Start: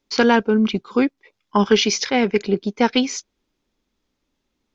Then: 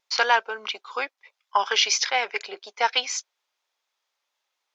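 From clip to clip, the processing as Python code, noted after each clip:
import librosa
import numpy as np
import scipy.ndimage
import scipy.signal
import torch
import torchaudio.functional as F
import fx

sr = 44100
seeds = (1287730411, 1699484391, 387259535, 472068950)

y = scipy.signal.sosfilt(scipy.signal.butter(4, 680.0, 'highpass', fs=sr, output='sos'), x)
y = fx.vibrato(y, sr, rate_hz=4.2, depth_cents=37.0)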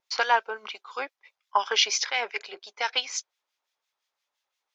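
y = fx.harmonic_tremolo(x, sr, hz=5.8, depth_pct=70, crossover_hz=1600.0)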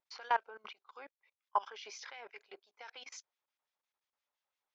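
y = fx.high_shelf(x, sr, hz=3300.0, db=-9.5)
y = fx.level_steps(y, sr, step_db=22)
y = F.gain(torch.from_numpy(y), -5.0).numpy()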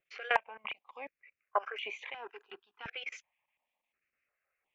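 y = fx.high_shelf_res(x, sr, hz=3400.0, db=-10.5, q=3.0)
y = fx.phaser_held(y, sr, hz=2.8, low_hz=250.0, high_hz=5200.0)
y = F.gain(torch.from_numpy(y), 8.5).numpy()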